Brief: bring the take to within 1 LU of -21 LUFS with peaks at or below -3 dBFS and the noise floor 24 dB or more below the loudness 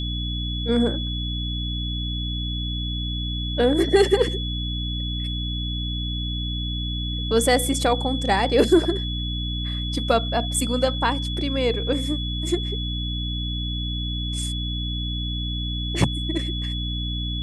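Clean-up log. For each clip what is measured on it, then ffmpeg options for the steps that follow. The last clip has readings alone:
hum 60 Hz; harmonics up to 300 Hz; hum level -25 dBFS; steady tone 3400 Hz; tone level -30 dBFS; loudness -24.0 LUFS; peak -5.0 dBFS; loudness target -21.0 LUFS
-> -af "bandreject=f=60:t=h:w=6,bandreject=f=120:t=h:w=6,bandreject=f=180:t=h:w=6,bandreject=f=240:t=h:w=6,bandreject=f=300:t=h:w=6"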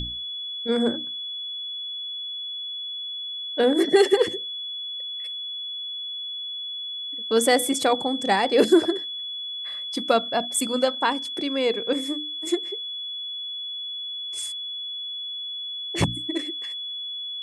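hum none; steady tone 3400 Hz; tone level -30 dBFS
-> -af "bandreject=f=3.4k:w=30"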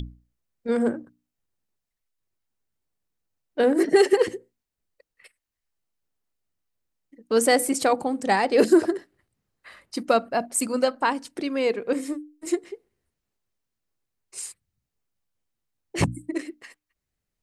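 steady tone none; loudness -23.5 LUFS; peak -6.5 dBFS; loudness target -21.0 LUFS
-> -af "volume=2.5dB"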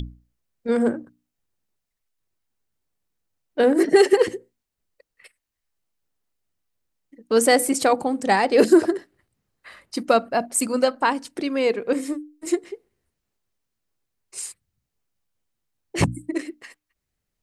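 loudness -21.0 LUFS; peak -4.0 dBFS; noise floor -82 dBFS

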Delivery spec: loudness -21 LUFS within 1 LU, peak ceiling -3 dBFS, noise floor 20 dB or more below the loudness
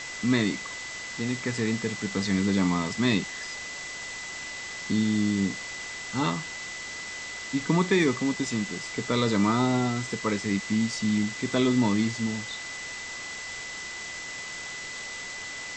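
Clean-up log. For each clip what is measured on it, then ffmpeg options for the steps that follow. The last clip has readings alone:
steady tone 2000 Hz; tone level -37 dBFS; noise floor -38 dBFS; noise floor target -48 dBFS; loudness -28.0 LUFS; peak -10.5 dBFS; loudness target -21.0 LUFS
-> -af "bandreject=f=2k:w=30"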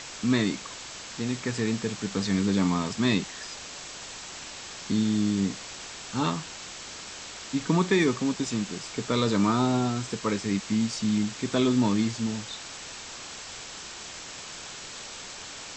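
steady tone none; noise floor -41 dBFS; noise floor target -49 dBFS
-> -af "afftdn=nr=8:nf=-41"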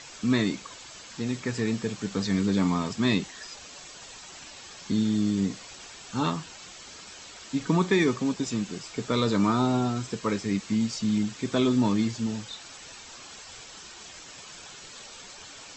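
noise floor -46 dBFS; noise floor target -47 dBFS
-> -af "afftdn=nr=6:nf=-46"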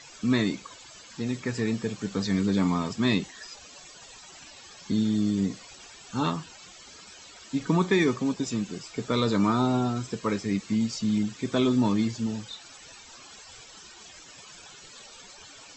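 noise floor -49 dBFS; loudness -27.0 LUFS; peak -11.0 dBFS; loudness target -21.0 LUFS
-> -af "volume=6dB"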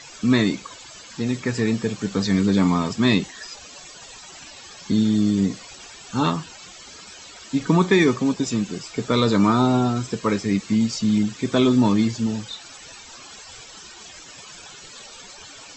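loudness -21.0 LUFS; peak -5.0 dBFS; noise floor -43 dBFS

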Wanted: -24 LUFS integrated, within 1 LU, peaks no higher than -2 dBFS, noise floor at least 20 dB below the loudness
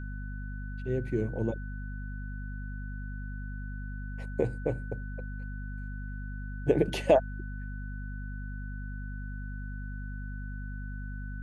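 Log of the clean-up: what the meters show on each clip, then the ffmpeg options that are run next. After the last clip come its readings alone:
hum 50 Hz; harmonics up to 250 Hz; hum level -35 dBFS; steady tone 1500 Hz; tone level -47 dBFS; loudness -35.0 LUFS; peak -8.5 dBFS; loudness target -24.0 LUFS
-> -af "bandreject=f=50:t=h:w=6,bandreject=f=100:t=h:w=6,bandreject=f=150:t=h:w=6,bandreject=f=200:t=h:w=6,bandreject=f=250:t=h:w=6"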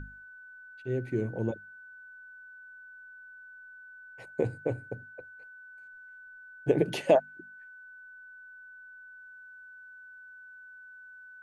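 hum none; steady tone 1500 Hz; tone level -47 dBFS
-> -af "bandreject=f=1.5k:w=30"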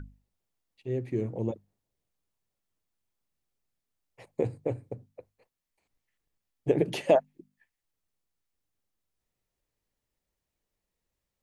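steady tone none; loudness -30.0 LUFS; peak -9.0 dBFS; loudness target -24.0 LUFS
-> -af "volume=6dB"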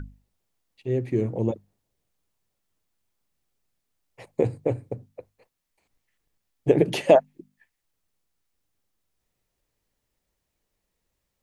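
loudness -24.0 LUFS; peak -3.0 dBFS; noise floor -80 dBFS

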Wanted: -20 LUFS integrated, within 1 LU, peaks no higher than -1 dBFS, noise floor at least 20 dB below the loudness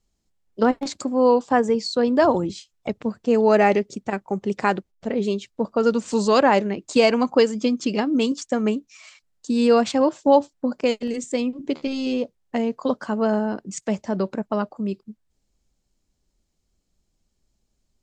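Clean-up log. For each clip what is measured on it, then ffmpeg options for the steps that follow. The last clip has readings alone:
loudness -22.0 LUFS; peak -4.0 dBFS; loudness target -20.0 LUFS
-> -af "volume=2dB"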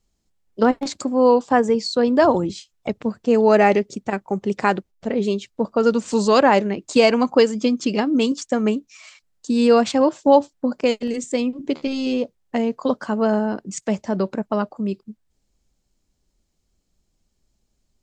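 loudness -20.0 LUFS; peak -2.0 dBFS; noise floor -71 dBFS

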